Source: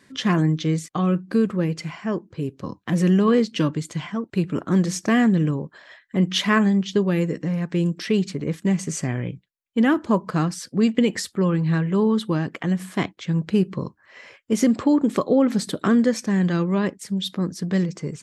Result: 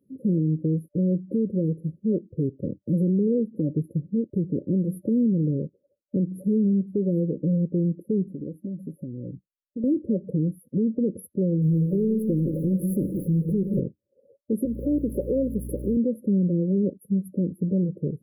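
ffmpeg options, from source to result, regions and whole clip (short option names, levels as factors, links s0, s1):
-filter_complex "[0:a]asettb=1/sr,asplit=3[s0][s1][s2];[s0]atrim=end=8.284[s3];[s1]atrim=start=8.28:end=9.84,asetpts=PTS-STARTPTS,afade=t=in:d=0.004:c=qsin,afade=t=out:st=1.556:d=0.004:c=qsin,aecho=1:1:3.5:0.33,atrim=end_sample=68796,acompressor=threshold=0.0251:ratio=6:attack=3.2:release=140:knee=1:detection=peak[s4];[s2]atrim=start=9.836[s5];[s3][s4]acrossfade=d=0.004:c1=hsin:c2=qsin[s6];[s6][s5]acrossfade=d=0.004:c1=qsin:c2=hsin,asettb=1/sr,asplit=3[s7][s8][s9];[s7]atrim=end=11.624[s10];[s8]atrim=start=11.62:end=13.8,asetpts=PTS-STARTPTS,afade=t=in:d=0.004:c=qsin,afade=t=out:st=2.176:d=0.004:c=qsin,aeval=exprs='val(0)+0.5*0.0422*sgn(val(0))':c=same,bandreject=f=60:t=h:w=6,bandreject=f=120:t=h:w=6,bandreject=f=180:t=h:w=6,bandreject=f=240:t=h:w=6,aecho=1:1:84|167|173:0.141|0.1|0.266,atrim=end_sample=96138[s11];[s9]atrim=start=13.796[s12];[s10][s11]acrossfade=d=0.004:c1=hsin:c2=qsin[s13];[s13][s12]acrossfade=d=0.004:c1=qsin:c2=hsin,asettb=1/sr,asplit=3[s14][s15][s16];[s14]atrim=end=14.654[s17];[s15]atrim=start=14.65:end=15.97,asetpts=PTS-STARTPTS,afade=t=in:d=0.004:c=qsin,afade=t=out:st=1.316:d=0.004:c=qsin,aeval=exprs='val(0)+0.5*0.0282*sgn(val(0))':c=same,highpass=f=560:p=1,aeval=exprs='val(0)+0.0178*(sin(2*PI*60*n/s)+sin(2*PI*2*60*n/s)/2+sin(2*PI*3*60*n/s)/3+sin(2*PI*4*60*n/s)/4+sin(2*PI*5*60*n/s)/5)':c=same[s18];[s16]atrim=start=15.966[s19];[s17][s18]acrossfade=d=0.004:c1=hsin:c2=qsin[s20];[s20][s19]acrossfade=d=0.004:c1=qsin:c2=hsin,afftfilt=real='re*(1-between(b*sr/4096,590,9900))':imag='im*(1-between(b*sr/4096,590,9900))':win_size=4096:overlap=0.75,afftdn=nr=14:nf=-42,alimiter=limit=0.119:level=0:latency=1:release=179,volume=1.33"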